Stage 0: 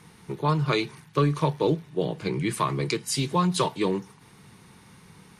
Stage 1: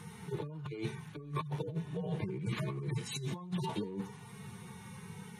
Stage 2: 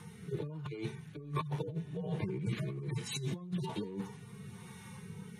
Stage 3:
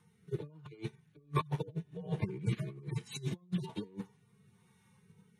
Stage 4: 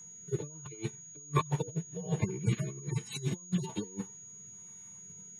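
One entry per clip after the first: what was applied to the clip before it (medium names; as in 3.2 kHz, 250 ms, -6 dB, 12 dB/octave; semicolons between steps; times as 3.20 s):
harmonic-percussive separation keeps harmonic; peaking EQ 4.7 kHz -8 dB 0.33 oct; compressor with a negative ratio -36 dBFS, ratio -1; trim -2.5 dB
rotary cabinet horn 1.2 Hz; trim +1.5 dB
upward expansion 2.5:1, over -46 dBFS; trim +5 dB
whistle 6.7 kHz -51 dBFS; trim +3.5 dB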